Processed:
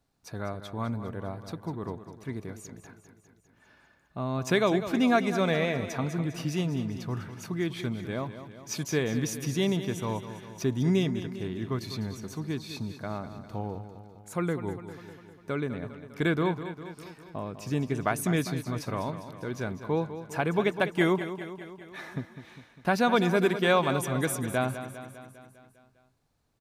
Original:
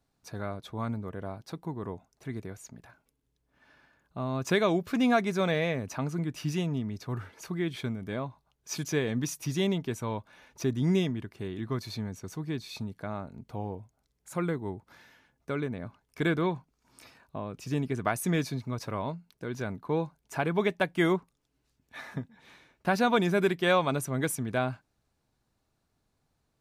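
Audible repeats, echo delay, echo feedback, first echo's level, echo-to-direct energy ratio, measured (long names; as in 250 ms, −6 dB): 6, 201 ms, 60%, −11.5 dB, −9.5 dB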